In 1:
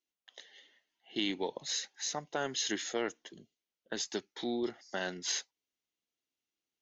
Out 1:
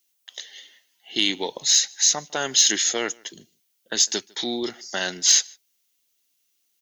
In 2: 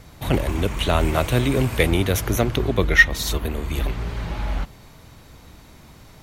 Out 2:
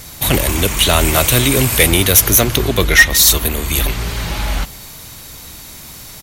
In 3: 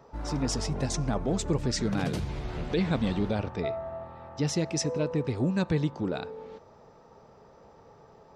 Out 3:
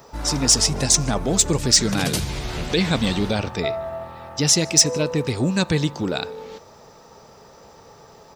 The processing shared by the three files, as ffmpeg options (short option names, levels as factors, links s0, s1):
-filter_complex "[0:a]asplit=2[s0][s1];[s1]adelay=151.6,volume=0.0447,highshelf=f=4000:g=-3.41[s2];[s0][s2]amix=inputs=2:normalize=0,crystalizer=i=5.5:c=0,acontrast=69,volume=0.891"